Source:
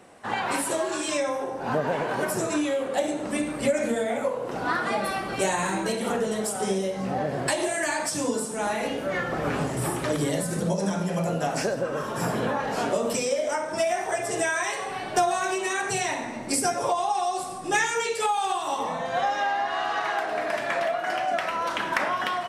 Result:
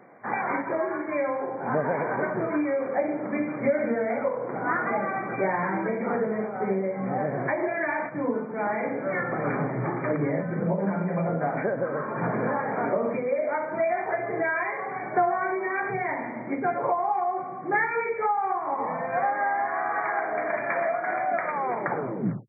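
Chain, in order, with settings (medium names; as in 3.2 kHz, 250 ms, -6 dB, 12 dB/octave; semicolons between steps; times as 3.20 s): tape stop on the ending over 1.06 s; FFT band-pass 110–2400 Hz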